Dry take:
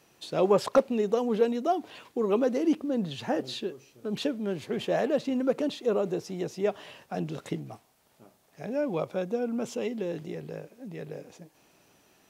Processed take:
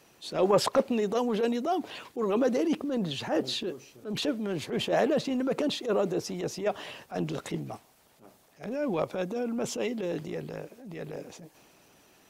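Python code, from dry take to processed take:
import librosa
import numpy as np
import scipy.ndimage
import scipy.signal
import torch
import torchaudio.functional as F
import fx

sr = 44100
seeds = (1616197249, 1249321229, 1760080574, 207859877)

y = fx.hpss(x, sr, part='harmonic', gain_db=-6)
y = fx.transient(y, sr, attack_db=-10, sustain_db=2)
y = y * 10.0 ** (5.5 / 20.0)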